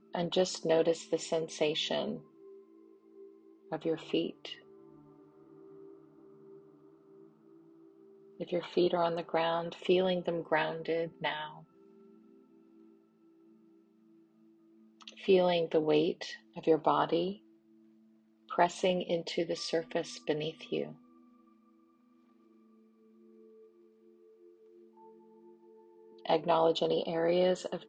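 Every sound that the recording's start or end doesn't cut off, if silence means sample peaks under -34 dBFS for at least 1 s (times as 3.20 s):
3.72–4.52 s
8.41–11.45 s
15.08–17.32 s
18.51–20.86 s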